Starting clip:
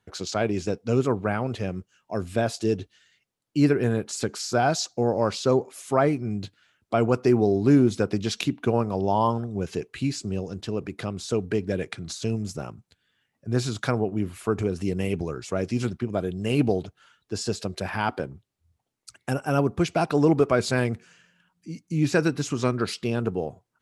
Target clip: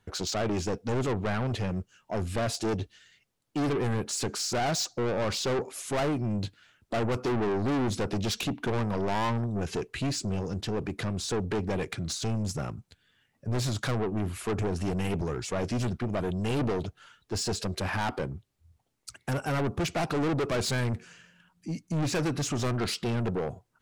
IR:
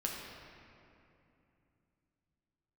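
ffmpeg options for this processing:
-filter_complex "[0:a]asplit=2[s0][s1];[s1]aeval=exprs='0.106*(abs(mod(val(0)/0.106+3,4)-2)-1)':c=same,volume=0.447[s2];[s0][s2]amix=inputs=2:normalize=0,lowshelf=f=64:g=10.5,asoftclip=type=tanh:threshold=0.0531"

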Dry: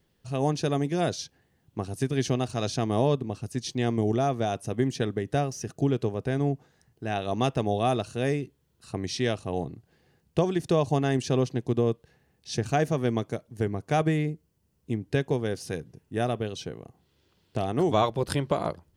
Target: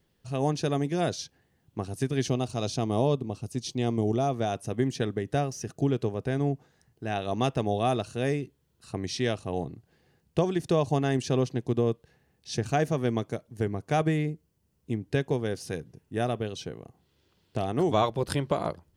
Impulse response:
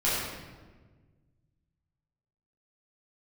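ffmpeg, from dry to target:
-filter_complex "[0:a]asettb=1/sr,asplit=3[s0][s1][s2];[s0]atrim=end=2.284[s3];[s1]atrim=start=2.28:end=4.34,asetpts=PTS-STARTPTS,afade=t=in:d=0.004:c=qsin,afade=t=out:st=2.056:d=0.004:c=qsin,equalizer=f=1700:t=o:w=0.6:g=-8.5[s4];[s2]atrim=start=4.336[s5];[s3][s4]acrossfade=d=0.004:c1=hsin:c2=qsin[s6];[s6][s5]acrossfade=d=0.004:c1=qsin:c2=hsin,volume=0.891"

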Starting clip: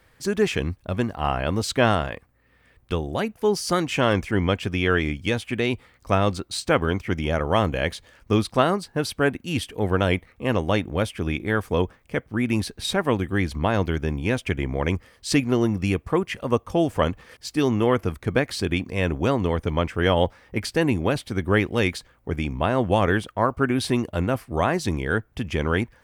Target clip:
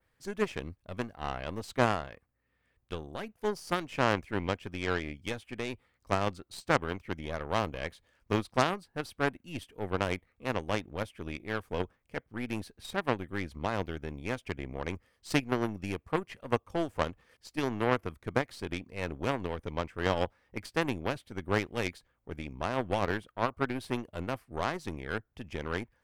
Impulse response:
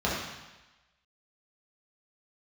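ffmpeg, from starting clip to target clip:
-af "adynamicequalizer=threshold=0.00708:dfrequency=6000:dqfactor=0.72:tfrequency=6000:tqfactor=0.72:attack=5:release=100:ratio=0.375:range=3:mode=cutabove:tftype=bell,aeval=exprs='0.75*(cos(1*acos(clip(val(0)/0.75,-1,1)))-cos(1*PI/2))+0.0473*(cos(3*acos(clip(val(0)/0.75,-1,1)))-cos(3*PI/2))+0.168*(cos(6*acos(clip(val(0)/0.75,-1,1)))-cos(6*PI/2))+0.0531*(cos(7*acos(clip(val(0)/0.75,-1,1)))-cos(7*PI/2))+0.133*(cos(8*acos(clip(val(0)/0.75,-1,1)))-cos(8*PI/2))':c=same,volume=0.501"

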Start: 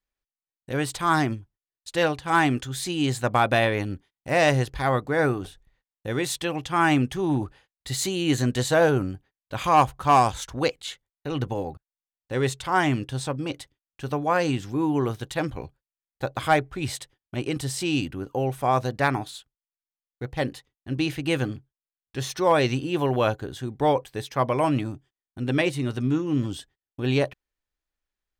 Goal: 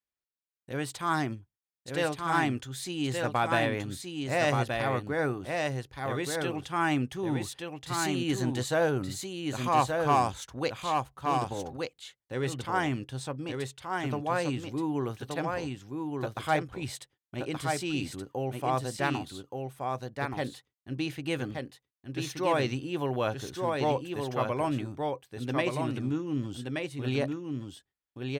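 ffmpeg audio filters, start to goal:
-af "highpass=73,aecho=1:1:1175:0.631,volume=0.447"

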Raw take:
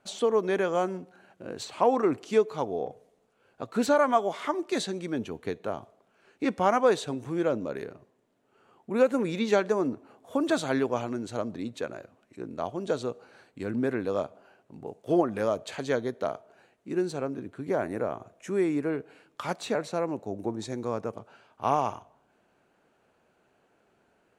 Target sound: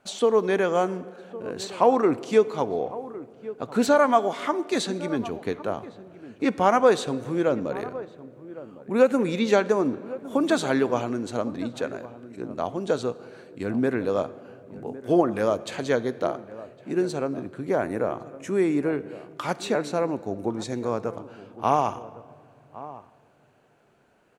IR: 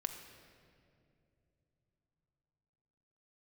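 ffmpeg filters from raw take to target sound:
-filter_complex "[0:a]asplit=2[s0][s1];[s1]adelay=1108,volume=0.158,highshelf=f=4000:g=-24.9[s2];[s0][s2]amix=inputs=2:normalize=0,asplit=2[s3][s4];[1:a]atrim=start_sample=2205[s5];[s4][s5]afir=irnorm=-1:irlink=0,volume=0.447[s6];[s3][s6]amix=inputs=2:normalize=0,volume=1.12"

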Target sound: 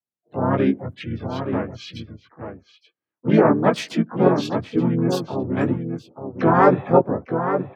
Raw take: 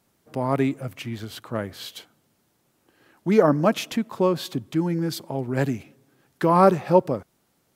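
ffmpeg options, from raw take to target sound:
-filter_complex "[0:a]highpass=f=89:w=0.5412,highpass=f=89:w=1.3066,afftdn=nr=35:nf=-38,adynamicequalizer=threshold=0.0141:dfrequency=270:dqfactor=5.1:tfrequency=270:tqfactor=5.1:attack=5:release=100:ratio=0.375:range=1.5:mode=boostabove:tftype=bell,flanger=delay=15.5:depth=3.4:speed=1.9,asplit=2[s0][s1];[s1]adelay=874.6,volume=0.447,highshelf=f=4000:g=-19.7[s2];[s0][s2]amix=inputs=2:normalize=0,asplit=4[s3][s4][s5][s6];[s4]asetrate=33038,aresample=44100,atempo=1.33484,volume=0.631[s7];[s5]asetrate=58866,aresample=44100,atempo=0.749154,volume=0.398[s8];[s6]asetrate=66075,aresample=44100,atempo=0.66742,volume=0.224[s9];[s3][s7][s8][s9]amix=inputs=4:normalize=0,volume=1.41"

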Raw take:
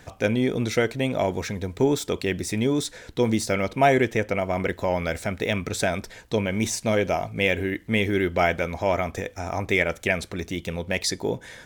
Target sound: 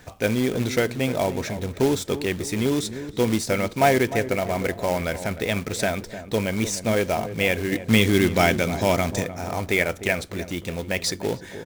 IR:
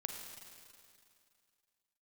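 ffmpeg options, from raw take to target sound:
-filter_complex "[0:a]asettb=1/sr,asplit=3[s0][s1][s2];[s0]atrim=end=7.724[s3];[s1]atrim=start=7.72:end=9.24,asetpts=PTS-STARTPTS,afade=t=in:d=0.004:c=qsin,afade=t=out:st=1.516:d=0.004:c=qsin,equalizer=f=125:t=o:w=1:g=8,equalizer=f=250:t=o:w=1:g=5,equalizer=f=4000:t=o:w=1:g=8,equalizer=f=8000:t=o:w=1:g=11[s4];[s2]atrim=start=9.236[s5];[s3][s4]acrossfade=d=0.004:c1=hsin:c2=qsin[s6];[s6][s5]acrossfade=d=0.004:c1=qsin:c2=hsin,acrusher=bits=3:mode=log:mix=0:aa=0.000001,asplit=2[s7][s8];[s8]adelay=303,lowpass=f=890:p=1,volume=0.282,asplit=2[s9][s10];[s10]adelay=303,lowpass=f=890:p=1,volume=0.48,asplit=2[s11][s12];[s12]adelay=303,lowpass=f=890:p=1,volume=0.48,asplit=2[s13][s14];[s14]adelay=303,lowpass=f=890:p=1,volume=0.48,asplit=2[s15][s16];[s16]adelay=303,lowpass=f=890:p=1,volume=0.48[s17];[s7][s9][s11][s13][s15][s17]amix=inputs=6:normalize=0"

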